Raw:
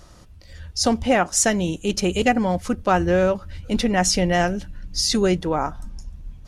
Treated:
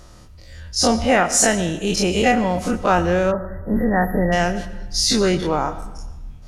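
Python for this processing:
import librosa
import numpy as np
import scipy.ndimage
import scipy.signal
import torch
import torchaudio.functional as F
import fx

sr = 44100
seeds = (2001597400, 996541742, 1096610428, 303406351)

y = fx.spec_dilate(x, sr, span_ms=60)
y = fx.rev_freeverb(y, sr, rt60_s=1.1, hf_ratio=0.8, predelay_ms=50, drr_db=13.0)
y = fx.spec_erase(y, sr, start_s=3.32, length_s=1.0, low_hz=2000.0, high_hz=11000.0)
y = F.gain(torch.from_numpy(y), -1.5).numpy()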